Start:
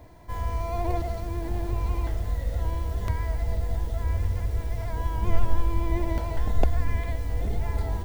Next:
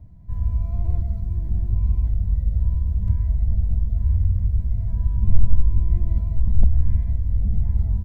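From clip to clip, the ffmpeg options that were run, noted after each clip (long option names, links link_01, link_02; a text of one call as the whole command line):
ffmpeg -i in.wav -af "firequalizer=gain_entry='entry(190,0);entry(330,-22);entry(1700,-28)':delay=0.05:min_phase=1,volume=7dB" out.wav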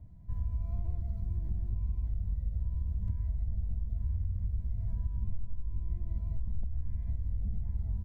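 ffmpeg -i in.wav -af "acompressor=threshold=-22dB:ratio=6,volume=-6.5dB" out.wav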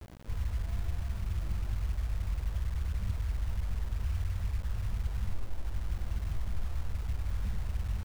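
ffmpeg -i in.wav -af "acrusher=bits=7:mix=0:aa=0.000001" out.wav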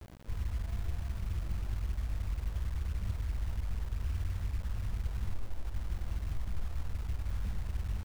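ffmpeg -i in.wav -af "aeval=exprs='0.0794*(cos(1*acos(clip(val(0)/0.0794,-1,1)))-cos(1*PI/2))+0.00282*(cos(8*acos(clip(val(0)/0.0794,-1,1)))-cos(8*PI/2))':channel_layout=same,volume=-2dB" out.wav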